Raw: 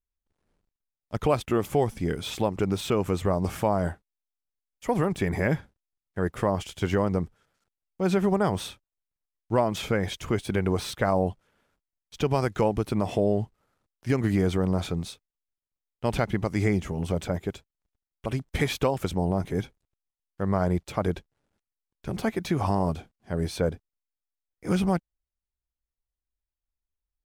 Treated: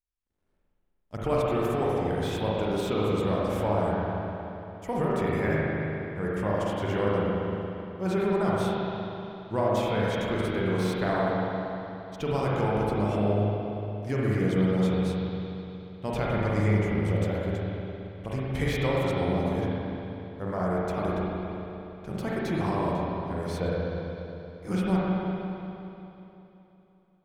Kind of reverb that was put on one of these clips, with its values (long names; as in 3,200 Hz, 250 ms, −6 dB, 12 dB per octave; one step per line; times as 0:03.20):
spring reverb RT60 3.2 s, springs 38/58 ms, chirp 70 ms, DRR −6.5 dB
level −7 dB